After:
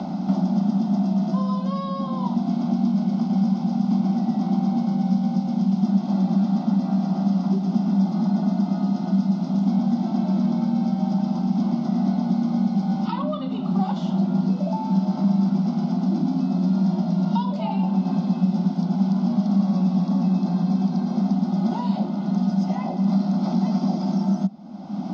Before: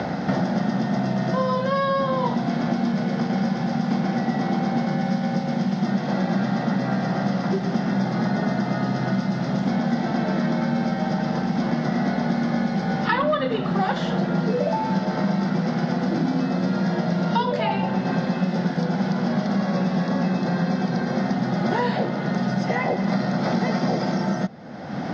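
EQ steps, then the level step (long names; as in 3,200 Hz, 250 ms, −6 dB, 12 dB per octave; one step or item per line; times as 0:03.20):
parametric band 190 Hz +13 dB 0.66 octaves
phaser with its sweep stopped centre 470 Hz, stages 6
−5.0 dB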